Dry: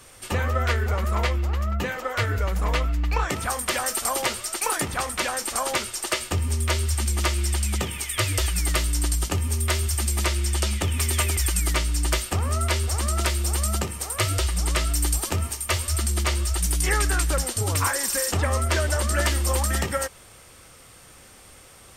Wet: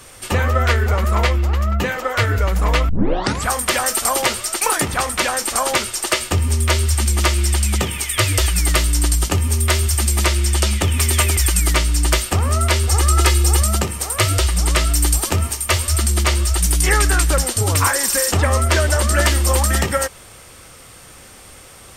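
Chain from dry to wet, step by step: 2.89 s: tape start 0.59 s; 12.89–13.62 s: comb 2.4 ms, depth 69%; trim +7 dB

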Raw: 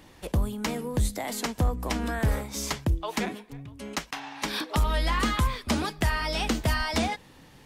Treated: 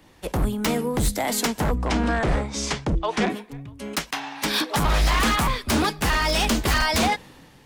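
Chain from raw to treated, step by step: wavefolder -23.5 dBFS; 1.78–3.30 s: Bessel low-pass 5.9 kHz, order 8; three bands expanded up and down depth 40%; trim +8.5 dB

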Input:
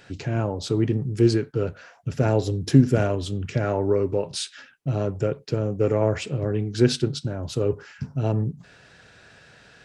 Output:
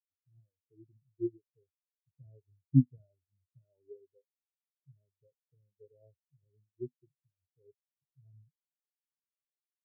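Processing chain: spectral contrast expander 4:1; trim -7.5 dB

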